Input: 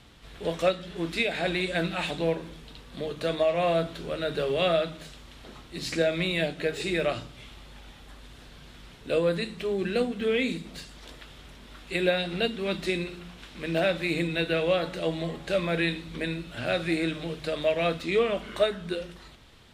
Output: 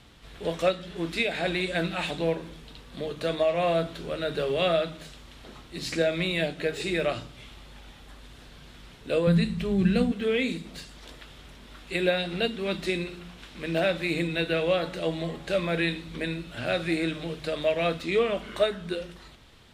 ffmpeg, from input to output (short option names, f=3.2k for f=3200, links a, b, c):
-filter_complex "[0:a]asettb=1/sr,asplit=3[a][b][c];[a]atrim=end=9.274[d];[b]atrim=start=9.27:end=10.12,asetpts=PTS-STARTPTS,afade=t=in:d=0.004:c=qsin,afade=t=out:st=0.846:d=0.004:c=qsin,lowshelf=f=240:t=q:w=1.5:g=11.5[e];[c]atrim=start=10.116[f];[d][e]acrossfade=d=0.004:c1=hsin:c2=qsin[g];[g][f]acrossfade=d=0.004:c1=qsin:c2=hsin"